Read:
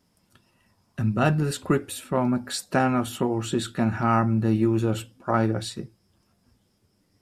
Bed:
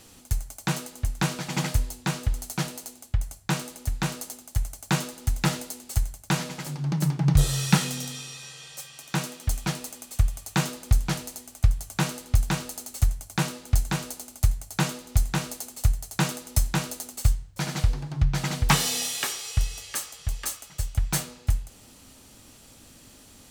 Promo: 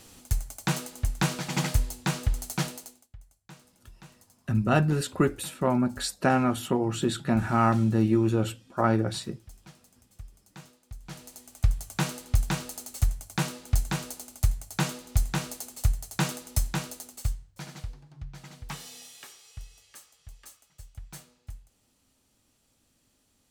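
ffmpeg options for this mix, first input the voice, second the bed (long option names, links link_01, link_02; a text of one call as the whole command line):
ffmpeg -i stem1.wav -i stem2.wav -filter_complex "[0:a]adelay=3500,volume=-1dB[link_01];[1:a]volume=20dB,afade=type=out:start_time=2.65:duration=0.43:silence=0.0749894,afade=type=in:start_time=10.99:duration=0.72:silence=0.0944061,afade=type=out:start_time=16.35:duration=1.65:silence=0.158489[link_02];[link_01][link_02]amix=inputs=2:normalize=0" out.wav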